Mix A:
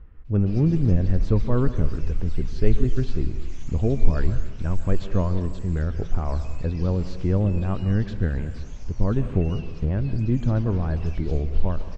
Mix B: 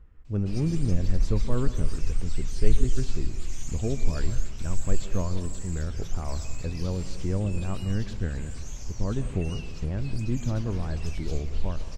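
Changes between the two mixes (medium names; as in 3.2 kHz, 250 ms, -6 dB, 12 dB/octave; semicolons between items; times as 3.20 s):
speech -6.5 dB; master: remove distance through air 160 m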